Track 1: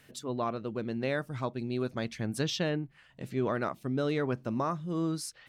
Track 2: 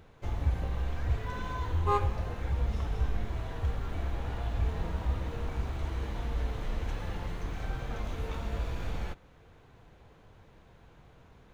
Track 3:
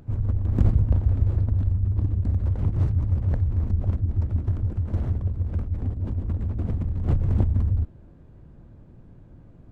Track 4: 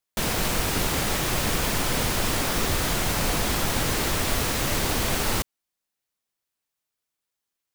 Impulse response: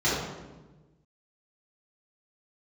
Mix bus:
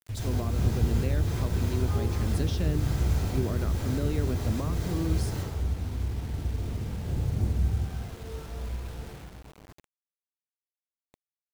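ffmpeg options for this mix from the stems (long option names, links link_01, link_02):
-filter_complex "[0:a]equalizer=frequency=1100:width=0.75:gain=-4,volume=0.5dB[link_01];[1:a]volume=-12.5dB,asplit=2[link_02][link_03];[link_03]volume=-10dB[link_04];[2:a]lowpass=1100,volume=-15dB,asplit=2[link_05][link_06];[link_06]volume=-10.5dB[link_07];[3:a]aeval=exprs='val(0)+0.002*(sin(2*PI*60*n/s)+sin(2*PI*2*60*n/s)/2+sin(2*PI*3*60*n/s)/3+sin(2*PI*4*60*n/s)/4+sin(2*PI*5*60*n/s)/5)':channel_layout=same,volume=-17dB,asplit=2[link_08][link_09];[link_09]volume=-10dB[link_10];[4:a]atrim=start_sample=2205[link_11];[link_04][link_07][link_10]amix=inputs=3:normalize=0[link_12];[link_12][link_11]afir=irnorm=-1:irlink=0[link_13];[link_01][link_02][link_05][link_08][link_13]amix=inputs=5:normalize=0,acrossover=split=400[link_14][link_15];[link_15]acompressor=threshold=-38dB:ratio=5[link_16];[link_14][link_16]amix=inputs=2:normalize=0,acrusher=bits=7:mix=0:aa=0.000001"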